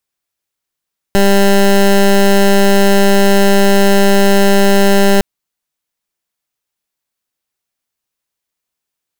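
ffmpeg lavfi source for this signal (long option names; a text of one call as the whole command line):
ffmpeg -f lavfi -i "aevalsrc='0.398*(2*lt(mod(198*t,1),0.17)-1)':duration=4.06:sample_rate=44100" out.wav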